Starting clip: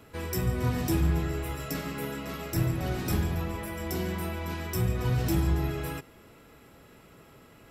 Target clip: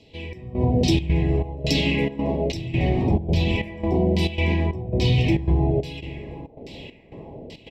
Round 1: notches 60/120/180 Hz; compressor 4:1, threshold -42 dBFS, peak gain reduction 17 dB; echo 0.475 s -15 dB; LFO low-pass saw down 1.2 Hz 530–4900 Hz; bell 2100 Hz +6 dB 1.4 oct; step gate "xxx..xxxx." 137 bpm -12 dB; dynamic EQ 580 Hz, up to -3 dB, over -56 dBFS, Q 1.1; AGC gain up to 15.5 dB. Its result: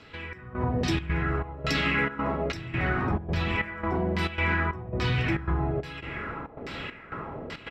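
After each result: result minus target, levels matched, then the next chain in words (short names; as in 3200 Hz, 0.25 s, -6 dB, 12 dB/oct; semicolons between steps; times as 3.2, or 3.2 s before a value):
1000 Hz band +8.5 dB; compressor: peak gain reduction +8 dB
notches 60/120/180 Hz; compressor 4:1, threshold -42 dBFS, peak gain reduction 17 dB; echo 0.475 s -15 dB; LFO low-pass saw down 1.2 Hz 530–4900 Hz; Butterworth band-stop 1400 Hz, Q 0.68; bell 2100 Hz +6 dB 1.4 oct; step gate "xxx..xxxx." 137 bpm -12 dB; dynamic EQ 580 Hz, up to -3 dB, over -56 dBFS, Q 1.1; AGC gain up to 15.5 dB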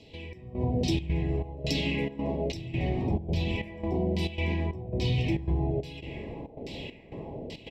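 compressor: peak gain reduction +8 dB
notches 60/120/180 Hz; compressor 4:1, threshold -31.5 dBFS, peak gain reduction 9 dB; echo 0.475 s -15 dB; LFO low-pass saw down 1.2 Hz 530–4900 Hz; Butterworth band-stop 1400 Hz, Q 0.68; bell 2100 Hz +6 dB 1.4 oct; step gate "xxx..xxxx." 137 bpm -12 dB; dynamic EQ 580 Hz, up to -3 dB, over -56 dBFS, Q 1.1; AGC gain up to 15.5 dB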